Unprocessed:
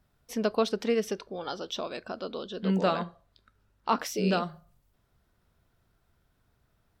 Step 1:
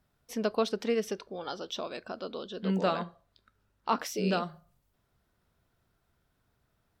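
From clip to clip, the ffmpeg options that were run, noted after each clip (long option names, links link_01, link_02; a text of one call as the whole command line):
ffmpeg -i in.wav -af "lowshelf=frequency=78:gain=-5.5,volume=-2dB" out.wav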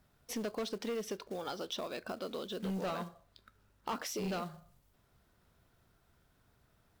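ffmpeg -i in.wav -af "acrusher=bits=4:mode=log:mix=0:aa=0.000001,asoftclip=type=tanh:threshold=-27dB,acompressor=threshold=-43dB:ratio=2.5,volume=4dB" out.wav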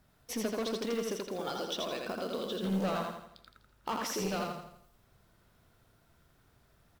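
ffmpeg -i in.wav -af "aecho=1:1:83|166|249|332|415|498:0.708|0.311|0.137|0.0603|0.0265|0.0117,volume=2dB" out.wav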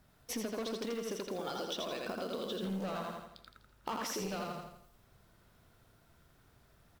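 ffmpeg -i in.wav -af "acompressor=threshold=-36dB:ratio=6,volume=1dB" out.wav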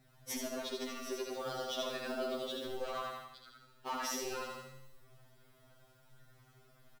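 ffmpeg -i in.wav -af "flanger=delay=0.5:depth=4.5:regen=54:speed=0.64:shape=sinusoidal,aecho=1:1:66|132|198|264|330|396|462:0.422|0.228|0.123|0.0664|0.0359|0.0194|0.0105,afftfilt=real='re*2.45*eq(mod(b,6),0)':imag='im*2.45*eq(mod(b,6),0)':win_size=2048:overlap=0.75,volume=6.5dB" out.wav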